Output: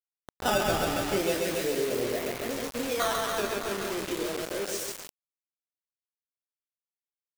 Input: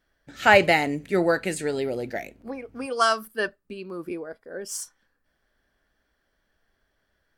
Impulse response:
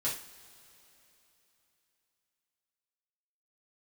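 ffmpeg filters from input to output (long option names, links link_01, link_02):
-filter_complex "[0:a]equalizer=frequency=530:width=0.66:gain=5.5,acrusher=samples=12:mix=1:aa=0.000001:lfo=1:lforange=19.2:lforate=0.36,asettb=1/sr,asplit=3[link_01][link_02][link_03];[link_01]atrim=end=1.174[link_04];[link_02]atrim=start=1.17:end=2.96,asetpts=PTS-STARTPTS,afade=type=in:duration=0.004:curve=qsin,afade=type=out:start_time=1.786:duration=0.004:curve=qsin,asuperstop=centerf=1100:order=4:qfactor=1.2[link_05];[link_03]atrim=start=2.956[link_06];[link_04][link_05]acrossfade=duration=0.004:curve1=hsin:curve2=qsin[link_07];[link_07][link_06]acrossfade=duration=0.004:curve1=qsin:curve2=hsin,asplit=2[link_08][link_09];[link_09]aecho=0:1:130|273|430.3|603.3|793.7:0.631|0.398|0.251|0.158|0.1[link_10];[link_08][link_10]amix=inputs=2:normalize=0,acompressor=threshold=-25dB:ratio=2.5,asplit=2[link_11][link_12];[link_12]adelay=25,volume=-6dB[link_13];[link_11][link_13]amix=inputs=2:normalize=0,acrusher=bits=4:mix=0:aa=0.000001,volume=-4.5dB"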